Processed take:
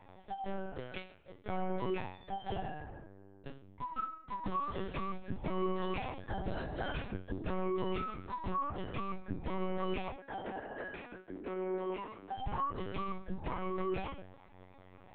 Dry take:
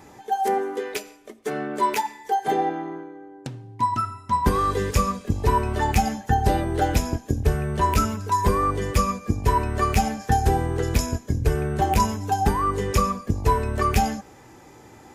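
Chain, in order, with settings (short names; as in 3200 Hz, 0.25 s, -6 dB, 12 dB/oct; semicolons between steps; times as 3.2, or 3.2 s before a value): resonator bank F#3 fifth, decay 0.37 s; limiter -35 dBFS, peak gain reduction 9 dB; LPC vocoder at 8 kHz pitch kept; 10.16–12.38 three-band isolator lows -19 dB, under 230 Hz, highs -15 dB, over 2800 Hz; gain +8 dB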